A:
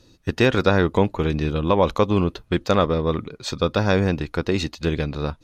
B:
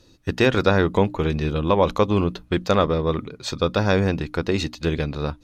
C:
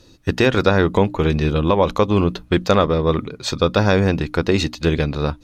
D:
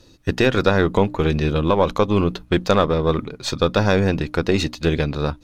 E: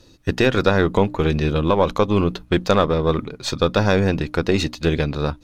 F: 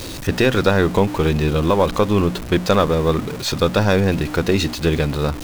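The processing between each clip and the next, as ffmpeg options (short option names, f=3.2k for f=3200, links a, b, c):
-af "bandreject=f=60:t=h:w=6,bandreject=f=120:t=h:w=6,bandreject=f=180:t=h:w=6,bandreject=f=240:t=h:w=6,bandreject=f=300:t=h:w=6"
-af "alimiter=limit=-8.5dB:level=0:latency=1:release=327,volume=5dB"
-af "aeval=exprs='if(lt(val(0),0),0.708*val(0),val(0))':c=same"
-af anull
-af "aeval=exprs='val(0)+0.5*0.0562*sgn(val(0))':c=same"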